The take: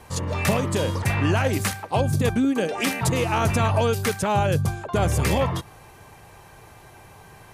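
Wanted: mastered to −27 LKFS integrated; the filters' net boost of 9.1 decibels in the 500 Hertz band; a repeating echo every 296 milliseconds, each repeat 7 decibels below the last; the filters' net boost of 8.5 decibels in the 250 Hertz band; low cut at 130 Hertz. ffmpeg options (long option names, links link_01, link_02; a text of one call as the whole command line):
ffmpeg -i in.wav -af "highpass=130,equalizer=frequency=250:width_type=o:gain=8.5,equalizer=frequency=500:width_type=o:gain=8.5,aecho=1:1:296|592|888|1184|1480:0.447|0.201|0.0905|0.0407|0.0183,volume=-10.5dB" out.wav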